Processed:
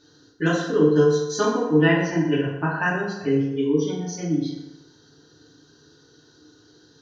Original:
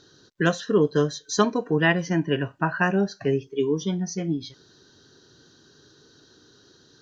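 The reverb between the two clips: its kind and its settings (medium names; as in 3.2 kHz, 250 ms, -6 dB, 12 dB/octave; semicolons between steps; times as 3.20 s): FDN reverb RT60 0.98 s, low-frequency decay 0.9×, high-frequency decay 0.65×, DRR -7 dB; trim -7.5 dB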